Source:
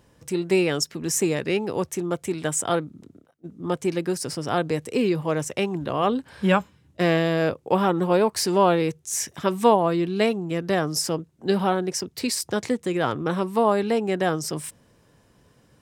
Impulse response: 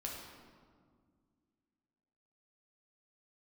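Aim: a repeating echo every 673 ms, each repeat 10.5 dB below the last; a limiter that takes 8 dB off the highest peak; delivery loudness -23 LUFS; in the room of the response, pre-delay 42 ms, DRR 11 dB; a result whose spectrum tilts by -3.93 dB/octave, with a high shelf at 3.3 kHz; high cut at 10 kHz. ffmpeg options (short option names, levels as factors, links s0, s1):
-filter_complex "[0:a]lowpass=10000,highshelf=f=3300:g=6,alimiter=limit=0.251:level=0:latency=1,aecho=1:1:673|1346|2019:0.299|0.0896|0.0269,asplit=2[s0][s1];[1:a]atrim=start_sample=2205,adelay=42[s2];[s1][s2]afir=irnorm=-1:irlink=0,volume=0.299[s3];[s0][s3]amix=inputs=2:normalize=0,volume=1.12"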